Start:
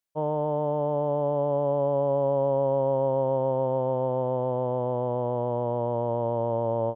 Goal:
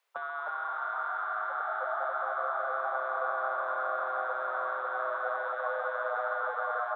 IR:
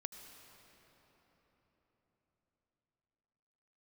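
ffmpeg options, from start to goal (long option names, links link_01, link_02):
-filter_complex "[0:a]bandreject=frequency=60:width_type=h:width=6,bandreject=frequency=120:width_type=h:width=6,bandreject=frequency=180:width_type=h:width=6,bandreject=frequency=240:width_type=h:width=6,alimiter=limit=-22.5dB:level=0:latency=1:release=14,asettb=1/sr,asplit=3[link_01][link_02][link_03];[link_01]atrim=end=0.474[link_04];[link_02]atrim=start=0.47:end=1.6,asetpts=PTS-STARTPTS,afade=type=in:duration=0.004:curve=qsin,afade=type=out:start_time=1.126:duration=0.004:curve=qsin,equalizer=frequency=300:width_type=o:width=1.5:gain=10[link_05];[link_03]atrim=start=1.596[link_06];[link_04][link_05]acrossfade=duration=0.004:curve1=hsin:curve2=qsin[link_07];[link_07][link_06]acrossfade=duration=0.004:curve1=qsin:curve2=hsin,asplit=6[link_08][link_09][link_10][link_11][link_12][link_13];[link_09]adelay=303,afreqshift=100,volume=-10dB[link_14];[link_10]adelay=606,afreqshift=200,volume=-16.7dB[link_15];[link_11]adelay=909,afreqshift=300,volume=-23.5dB[link_16];[link_12]adelay=1212,afreqshift=400,volume=-30.2dB[link_17];[link_13]adelay=1515,afreqshift=500,volume=-37dB[link_18];[link_08][link_14][link_15][link_16][link_17][link_18]amix=inputs=6:normalize=0,asplit=2[link_19][link_20];[1:a]atrim=start_sample=2205[link_21];[link_20][link_21]afir=irnorm=-1:irlink=0,volume=5dB[link_22];[link_19][link_22]amix=inputs=2:normalize=0,afreqshift=390,bass=frequency=250:gain=-7,treble=frequency=4000:gain=-14,asplit=2[link_23][link_24];[link_24]acompressor=threshold=-34dB:ratio=6,volume=2.5dB[link_25];[link_23][link_25]amix=inputs=2:normalize=0,afftfilt=real='re*lt(hypot(re,im),0.178)':imag='im*lt(hypot(re,im),0.178)':win_size=1024:overlap=0.75,volume=3dB"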